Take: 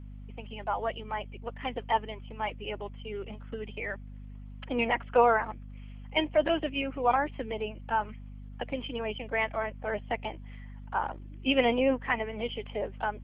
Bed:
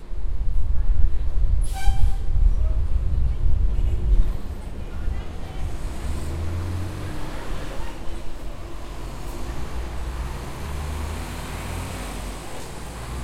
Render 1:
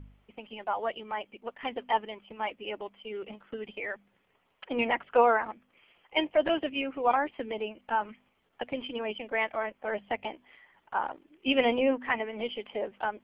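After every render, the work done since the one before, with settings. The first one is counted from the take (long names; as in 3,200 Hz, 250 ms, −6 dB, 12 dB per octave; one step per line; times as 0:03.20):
hum removal 50 Hz, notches 5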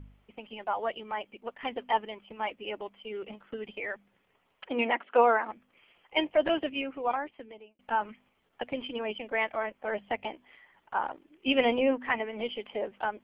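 0:04.71–0:05.50: linear-phase brick-wall band-pass 190–4,400 Hz
0:06.63–0:07.79: fade out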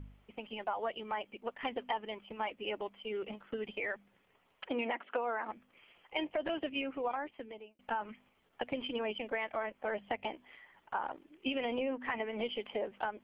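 brickwall limiter −19.5 dBFS, peak gain reduction 9 dB
downward compressor 5 to 1, threshold −32 dBFS, peak gain reduction 8.5 dB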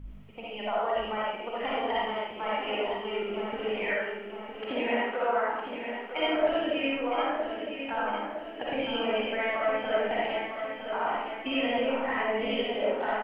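repeating echo 959 ms, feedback 53%, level −8 dB
comb and all-pass reverb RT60 0.81 s, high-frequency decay 0.8×, pre-delay 20 ms, DRR −7 dB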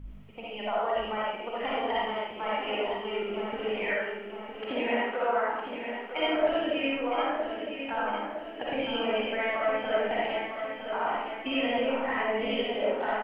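no processing that can be heard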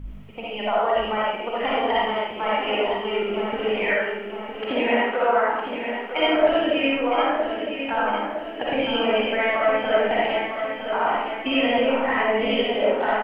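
level +7.5 dB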